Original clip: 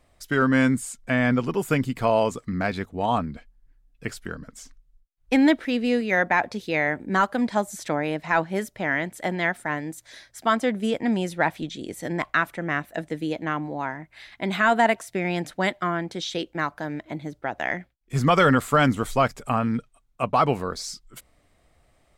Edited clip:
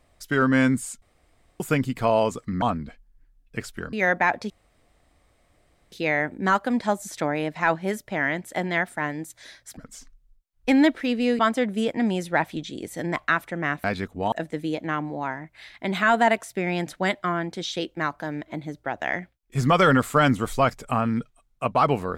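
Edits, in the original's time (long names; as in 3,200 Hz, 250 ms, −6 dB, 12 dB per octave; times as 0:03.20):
0:01.02–0:01.60: fill with room tone
0:02.62–0:03.10: move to 0:12.90
0:04.41–0:06.03: move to 0:10.45
0:06.60: splice in room tone 1.42 s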